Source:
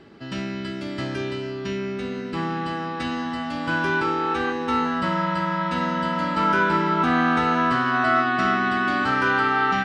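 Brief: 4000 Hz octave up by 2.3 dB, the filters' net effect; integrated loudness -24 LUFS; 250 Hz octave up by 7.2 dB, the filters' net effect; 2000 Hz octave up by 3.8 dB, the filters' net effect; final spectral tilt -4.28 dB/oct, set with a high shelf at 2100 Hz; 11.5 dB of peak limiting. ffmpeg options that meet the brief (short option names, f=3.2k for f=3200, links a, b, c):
-af "equalizer=f=250:t=o:g=8.5,equalizer=f=2k:t=o:g=8.5,highshelf=f=2.1k:g=-8,equalizer=f=4k:t=o:g=7,alimiter=limit=-16dB:level=0:latency=1"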